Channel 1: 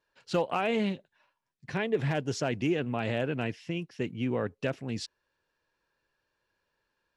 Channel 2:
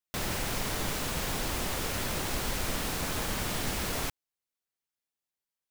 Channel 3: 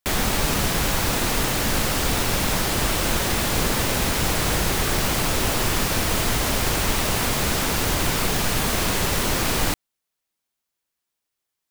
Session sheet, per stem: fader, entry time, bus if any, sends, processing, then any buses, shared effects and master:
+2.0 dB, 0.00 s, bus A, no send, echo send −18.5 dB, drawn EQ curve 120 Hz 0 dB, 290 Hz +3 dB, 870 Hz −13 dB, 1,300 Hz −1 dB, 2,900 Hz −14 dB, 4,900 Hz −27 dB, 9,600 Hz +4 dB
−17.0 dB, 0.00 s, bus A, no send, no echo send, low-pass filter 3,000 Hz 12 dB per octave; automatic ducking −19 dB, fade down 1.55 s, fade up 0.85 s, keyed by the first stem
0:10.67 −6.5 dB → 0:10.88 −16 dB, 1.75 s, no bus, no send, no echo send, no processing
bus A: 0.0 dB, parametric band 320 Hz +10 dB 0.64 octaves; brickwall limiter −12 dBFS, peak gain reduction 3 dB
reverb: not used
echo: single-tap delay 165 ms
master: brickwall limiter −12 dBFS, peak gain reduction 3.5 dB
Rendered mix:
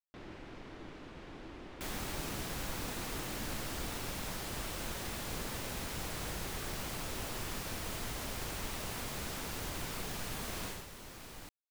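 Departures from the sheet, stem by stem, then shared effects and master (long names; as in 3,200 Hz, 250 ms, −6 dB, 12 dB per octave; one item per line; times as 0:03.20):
stem 1: muted
stem 3 −6.5 dB → −18.0 dB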